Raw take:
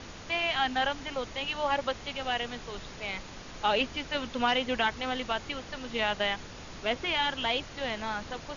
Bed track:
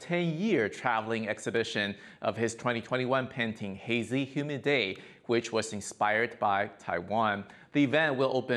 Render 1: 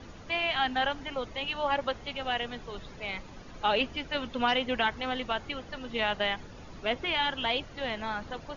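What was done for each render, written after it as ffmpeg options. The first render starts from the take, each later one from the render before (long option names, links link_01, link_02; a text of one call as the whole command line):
ffmpeg -i in.wav -af "afftdn=noise_reduction=10:noise_floor=-45" out.wav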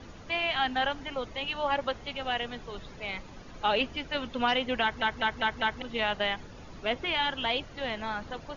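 ffmpeg -i in.wav -filter_complex "[0:a]asplit=6[link_01][link_02][link_03][link_04][link_05][link_06];[link_01]atrim=end=5.022[link_07];[link_02]atrim=start=4.818:end=5.022[link_08];[link_03]atrim=start=4.818:end=5.022[link_09];[link_04]atrim=start=4.818:end=5.022[link_10];[link_05]atrim=start=4.818:end=5.022[link_11];[link_06]atrim=start=5.818[link_12];[link_07][link_08]acrossfade=duration=0.004:curve1=hsin:curve2=hsin[link_13];[link_13][link_09]acrossfade=duration=0.004:curve1=hsin:curve2=hsin[link_14];[link_14][link_10]acrossfade=duration=0.004:curve1=hsin:curve2=hsin[link_15];[link_15][link_11]acrossfade=duration=0.004:curve1=hsin:curve2=hsin[link_16];[link_16][link_12]acrossfade=duration=0.004:curve1=hsin:curve2=hsin" out.wav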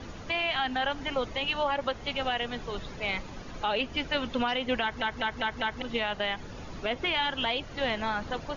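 ffmpeg -i in.wav -af "alimiter=limit=-23dB:level=0:latency=1:release=176,acontrast=24" out.wav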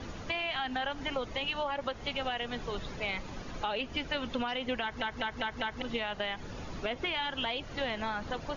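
ffmpeg -i in.wav -af "acompressor=threshold=-31dB:ratio=3" out.wav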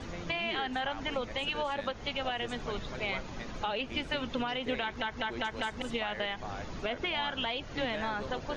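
ffmpeg -i in.wav -i bed.wav -filter_complex "[1:a]volume=-15dB[link_01];[0:a][link_01]amix=inputs=2:normalize=0" out.wav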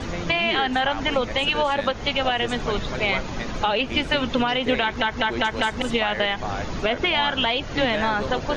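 ffmpeg -i in.wav -af "volume=11.5dB" out.wav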